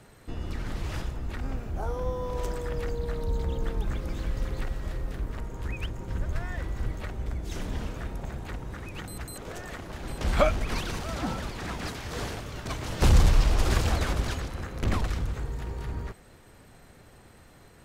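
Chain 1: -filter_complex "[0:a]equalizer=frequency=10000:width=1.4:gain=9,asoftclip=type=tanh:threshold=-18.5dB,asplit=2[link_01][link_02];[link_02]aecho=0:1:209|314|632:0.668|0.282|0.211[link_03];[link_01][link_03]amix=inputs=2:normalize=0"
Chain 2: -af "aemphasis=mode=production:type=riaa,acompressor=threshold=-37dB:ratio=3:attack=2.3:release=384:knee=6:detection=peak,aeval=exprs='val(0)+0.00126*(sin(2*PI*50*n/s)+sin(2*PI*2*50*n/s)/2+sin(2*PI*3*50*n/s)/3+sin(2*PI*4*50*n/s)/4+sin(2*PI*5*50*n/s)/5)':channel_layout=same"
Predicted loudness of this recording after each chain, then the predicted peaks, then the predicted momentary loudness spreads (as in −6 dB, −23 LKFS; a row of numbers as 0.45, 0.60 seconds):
−31.0, −40.5 LKFS; −12.5, −19.5 dBFS; 11, 8 LU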